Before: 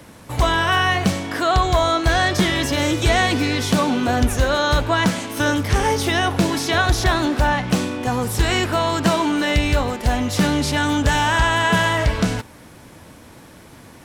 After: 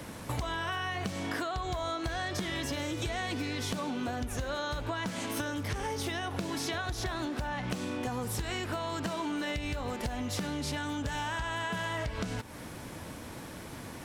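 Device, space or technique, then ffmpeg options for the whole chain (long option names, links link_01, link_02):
serial compression, leveller first: -af "acompressor=threshold=-20dB:ratio=6,acompressor=threshold=-32dB:ratio=6"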